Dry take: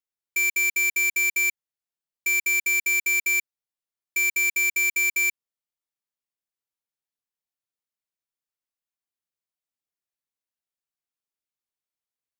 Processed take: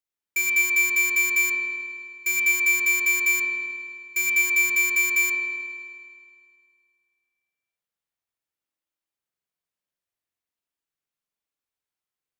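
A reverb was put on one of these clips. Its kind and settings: spring tank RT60 2.1 s, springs 45 ms, chirp 55 ms, DRR -1.5 dB

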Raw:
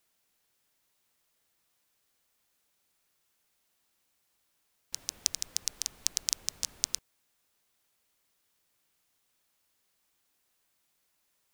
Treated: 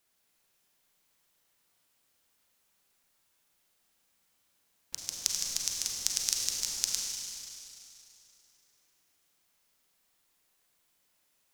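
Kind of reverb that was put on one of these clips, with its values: Schroeder reverb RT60 2.8 s, combs from 33 ms, DRR -0.5 dB; gain -1 dB

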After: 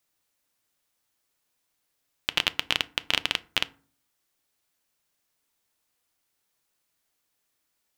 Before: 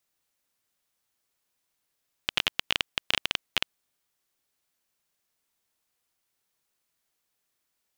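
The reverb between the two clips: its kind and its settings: FDN reverb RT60 0.41 s, low-frequency decay 1.5×, high-frequency decay 0.55×, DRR 14 dB; gain +2 dB

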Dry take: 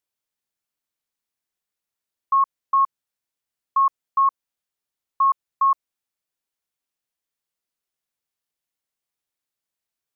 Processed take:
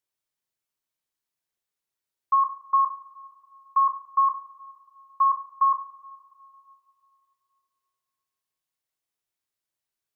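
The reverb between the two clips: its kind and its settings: two-slope reverb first 0.43 s, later 2.8 s, from -20 dB, DRR 4 dB; gain -3 dB

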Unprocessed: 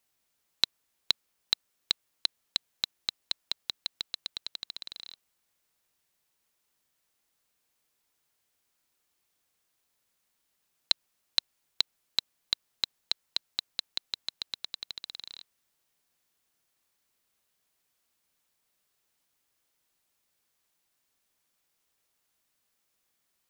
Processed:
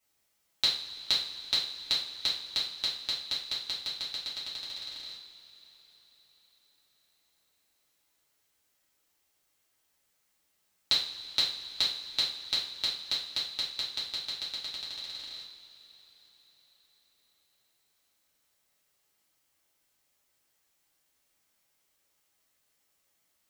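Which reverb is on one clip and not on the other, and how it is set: two-slope reverb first 0.46 s, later 4.9 s, from -20 dB, DRR -9 dB; gain -6.5 dB

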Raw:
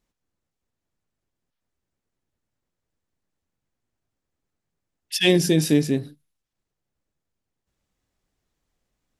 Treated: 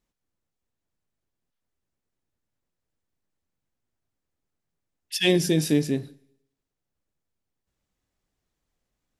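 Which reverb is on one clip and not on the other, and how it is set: Schroeder reverb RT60 0.77 s, combs from 32 ms, DRR 20 dB; gain -3 dB

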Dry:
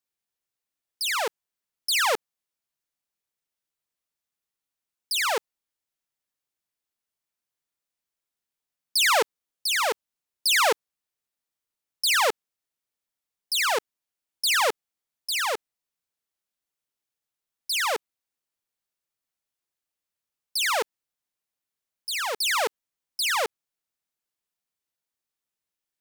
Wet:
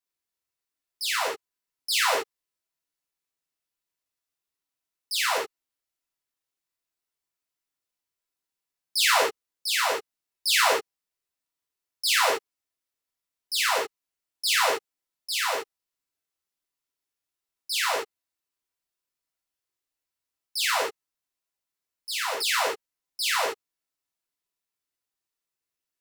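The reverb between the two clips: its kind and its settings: non-linear reverb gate 90 ms flat, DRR -4.5 dB; gain -6 dB

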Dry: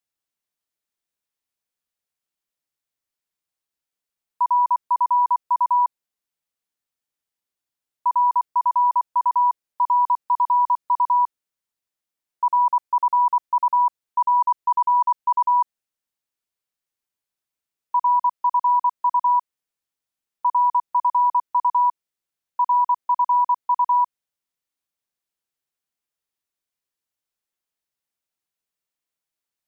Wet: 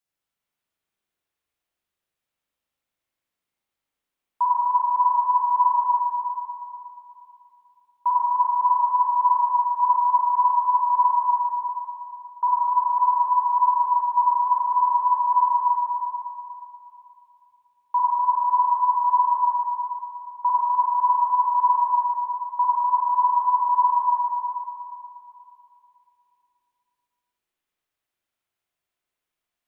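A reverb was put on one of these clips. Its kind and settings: spring tank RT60 2.8 s, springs 39/53 ms, chirp 65 ms, DRR -6 dB; gain -1.5 dB

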